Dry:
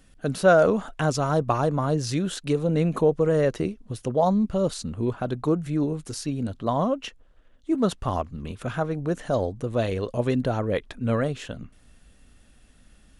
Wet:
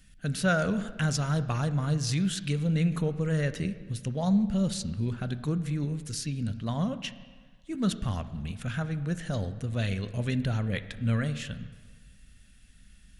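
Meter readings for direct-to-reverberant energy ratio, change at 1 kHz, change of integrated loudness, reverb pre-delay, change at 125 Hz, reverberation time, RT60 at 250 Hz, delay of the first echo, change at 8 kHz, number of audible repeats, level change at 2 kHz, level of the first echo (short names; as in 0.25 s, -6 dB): 11.5 dB, -10.5 dB, -5.0 dB, 5 ms, 0.0 dB, 1.5 s, 1.4 s, none, 0.0 dB, none, -2.0 dB, none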